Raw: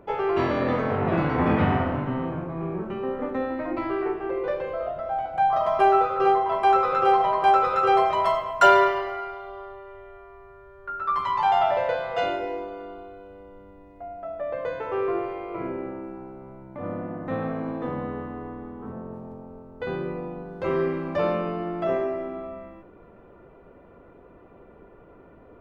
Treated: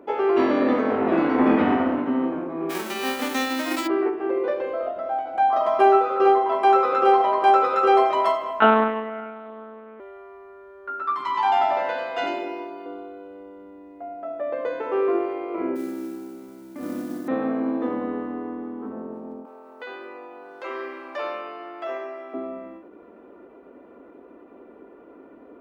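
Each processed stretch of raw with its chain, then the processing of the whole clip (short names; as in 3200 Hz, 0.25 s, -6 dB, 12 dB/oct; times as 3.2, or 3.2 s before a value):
2.69–3.86 spectral whitening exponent 0.3 + notches 50/100/150/200/250/300/350/400 Hz
8.6–10 air absorption 180 m + monotone LPC vocoder at 8 kHz 220 Hz
11.02–12.86 HPF 100 Hz + bell 510 Hz -11 dB 0.62 oct + echo 94 ms -5 dB
15.75–17.28 band shelf 690 Hz -8 dB + modulation noise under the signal 18 dB
19.45–22.34 Bessel high-pass 1100 Hz + upward compressor, threshold -37 dBFS
whole clip: HPF 54 Hz; resonant low shelf 190 Hz -11.5 dB, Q 3; ending taper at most 100 dB/s; gain +1 dB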